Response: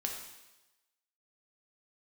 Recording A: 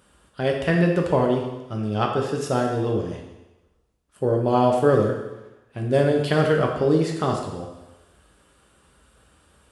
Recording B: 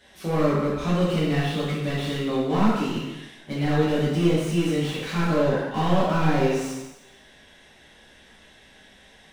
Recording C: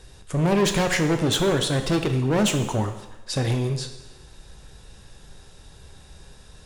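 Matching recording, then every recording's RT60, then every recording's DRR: A; 1.1, 1.1, 1.1 seconds; 0.5, −8.5, 6.0 decibels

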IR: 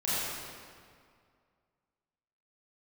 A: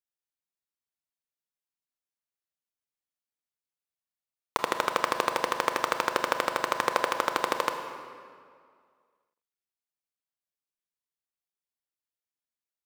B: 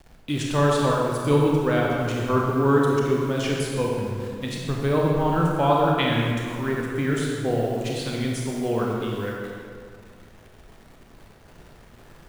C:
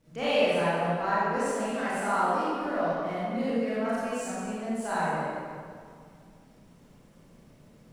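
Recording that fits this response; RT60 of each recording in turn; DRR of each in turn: C; 2.1, 2.1, 2.1 seconds; 6.0, −2.5, −11.0 decibels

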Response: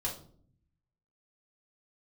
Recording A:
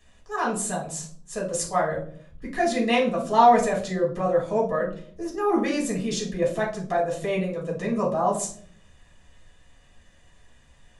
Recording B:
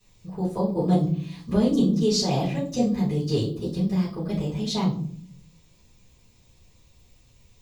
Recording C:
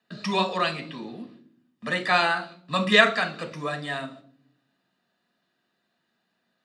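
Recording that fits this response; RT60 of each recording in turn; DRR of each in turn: A; 0.55, 0.55, 0.55 seconds; −3.5, −13.0, 4.5 decibels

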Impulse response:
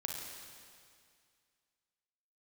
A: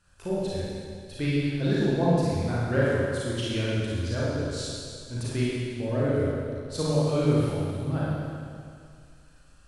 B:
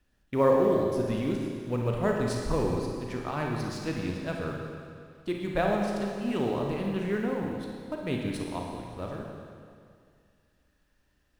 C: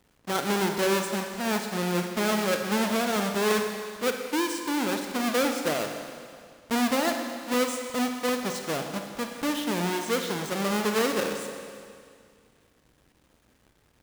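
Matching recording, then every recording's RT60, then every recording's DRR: B; 2.2, 2.2, 2.2 seconds; −8.0, 0.0, 4.5 decibels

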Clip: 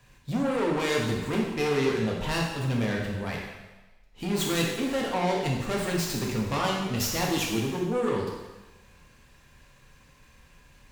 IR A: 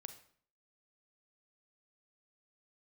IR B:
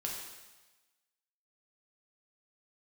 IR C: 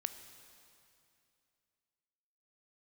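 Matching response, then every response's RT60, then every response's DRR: B; 0.55, 1.2, 2.6 seconds; 8.5, −2.5, 9.0 decibels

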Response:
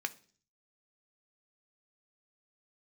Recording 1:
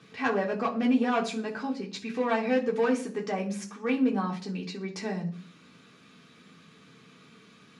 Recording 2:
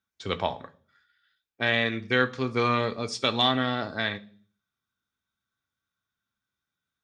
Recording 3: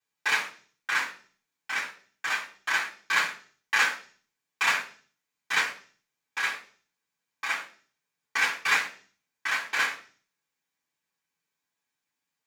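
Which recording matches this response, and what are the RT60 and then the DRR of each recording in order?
2; 0.45, 0.45, 0.45 seconds; −1.5, 8.0, −10.5 decibels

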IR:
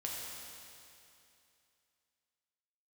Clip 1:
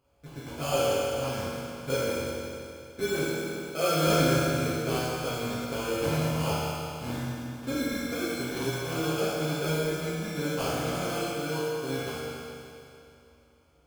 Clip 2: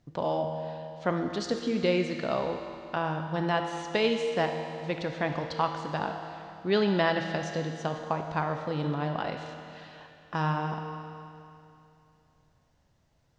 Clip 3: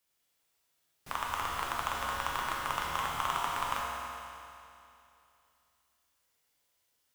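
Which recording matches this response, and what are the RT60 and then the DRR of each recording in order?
3; 2.7, 2.7, 2.7 seconds; −11.0, 4.0, −3.5 decibels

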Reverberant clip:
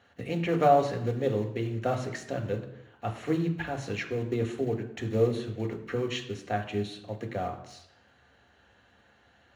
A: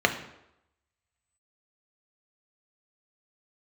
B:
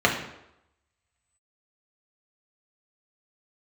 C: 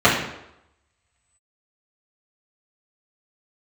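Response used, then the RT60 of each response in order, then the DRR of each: A; 0.85, 0.85, 0.85 seconds; 4.5, −1.5, −10.0 decibels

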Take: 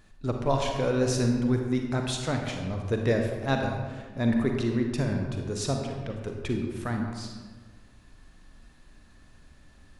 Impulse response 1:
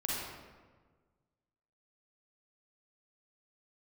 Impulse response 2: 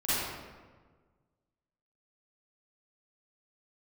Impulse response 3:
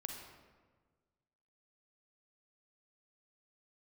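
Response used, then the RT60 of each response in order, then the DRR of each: 3; 1.5, 1.5, 1.5 seconds; −5.5, −14.0, 2.5 decibels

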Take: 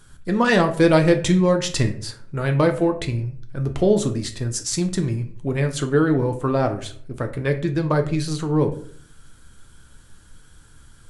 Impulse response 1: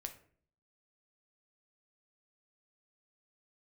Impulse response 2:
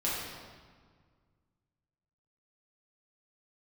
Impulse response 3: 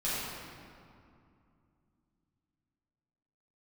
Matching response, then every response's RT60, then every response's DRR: 1; 0.50, 1.7, 2.5 seconds; 5.5, −8.0, −11.5 decibels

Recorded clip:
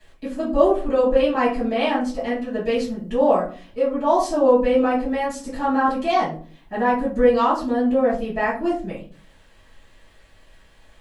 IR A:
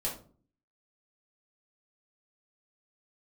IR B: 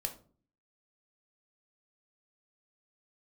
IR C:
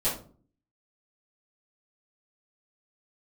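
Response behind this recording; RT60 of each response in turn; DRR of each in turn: C; 0.45, 0.45, 0.45 seconds; −4.5, 4.5, −11.0 decibels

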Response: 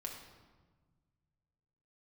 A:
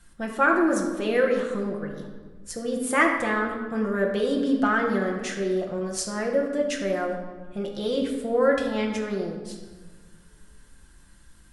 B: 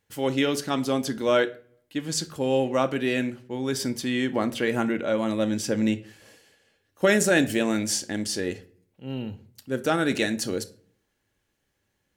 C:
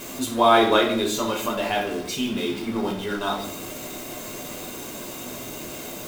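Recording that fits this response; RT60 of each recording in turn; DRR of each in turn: A; 1.4, 0.45, 0.85 seconds; −0.5, 8.5, −1.0 decibels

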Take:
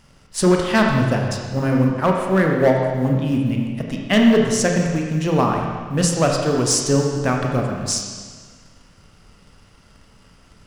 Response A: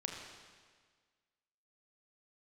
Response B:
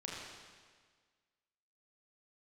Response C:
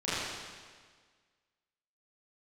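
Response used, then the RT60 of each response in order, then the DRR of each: A; 1.6, 1.6, 1.6 seconds; 0.5, −4.5, −13.0 decibels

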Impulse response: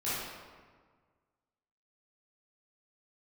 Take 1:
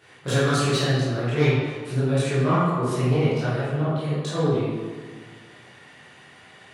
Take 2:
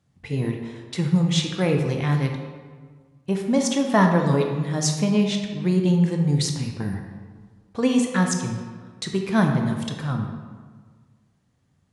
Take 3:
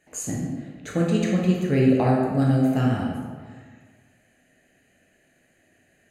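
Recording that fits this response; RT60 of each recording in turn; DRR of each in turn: 1; 1.6, 1.6, 1.6 seconds; −12.5, 2.5, −3.0 decibels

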